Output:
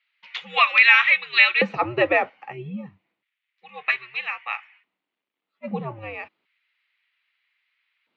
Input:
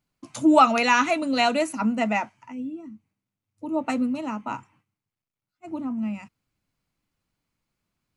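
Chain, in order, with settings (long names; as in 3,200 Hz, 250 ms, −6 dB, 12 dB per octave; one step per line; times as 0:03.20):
auto-filter high-pass square 0.31 Hz 410–2,100 Hz
single-sideband voice off tune −120 Hz 320–3,600 Hz
high-shelf EQ 2,400 Hz +11 dB
in parallel at +2.5 dB: downward compressor, threshold −24 dBFS, peak gain reduction 14.5 dB
on the sum: level −2 dB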